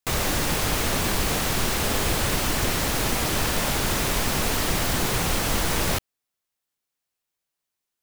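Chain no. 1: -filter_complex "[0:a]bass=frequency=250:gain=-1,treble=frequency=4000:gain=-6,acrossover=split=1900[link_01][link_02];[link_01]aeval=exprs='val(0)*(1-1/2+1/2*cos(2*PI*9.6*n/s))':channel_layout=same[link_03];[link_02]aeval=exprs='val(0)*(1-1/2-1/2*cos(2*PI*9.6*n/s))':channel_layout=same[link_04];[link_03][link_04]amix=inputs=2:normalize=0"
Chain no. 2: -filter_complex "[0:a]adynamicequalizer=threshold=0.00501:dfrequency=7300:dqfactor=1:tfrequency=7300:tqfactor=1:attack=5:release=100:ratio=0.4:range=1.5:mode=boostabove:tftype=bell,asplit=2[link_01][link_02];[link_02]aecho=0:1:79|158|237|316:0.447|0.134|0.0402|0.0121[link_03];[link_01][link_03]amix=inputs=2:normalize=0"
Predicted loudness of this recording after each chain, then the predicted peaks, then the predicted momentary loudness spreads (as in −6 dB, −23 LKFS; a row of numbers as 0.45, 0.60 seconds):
−30.5, −22.0 LKFS; −13.5, −9.0 dBFS; 1, 0 LU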